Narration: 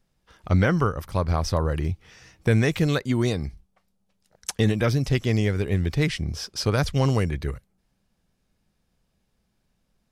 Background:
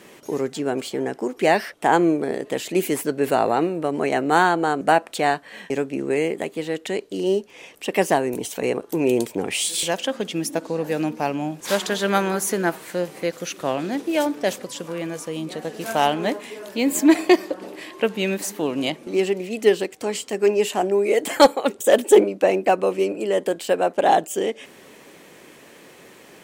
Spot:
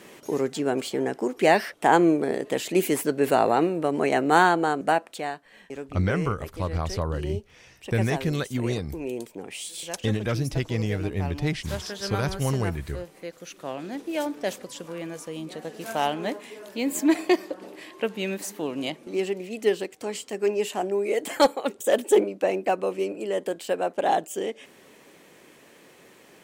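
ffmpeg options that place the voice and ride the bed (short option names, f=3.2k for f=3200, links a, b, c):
-filter_complex "[0:a]adelay=5450,volume=-4.5dB[a];[1:a]volume=5.5dB,afade=t=out:st=4.48:d=0.84:silence=0.266073,afade=t=in:st=13.36:d=1.04:silence=0.473151[b];[a][b]amix=inputs=2:normalize=0"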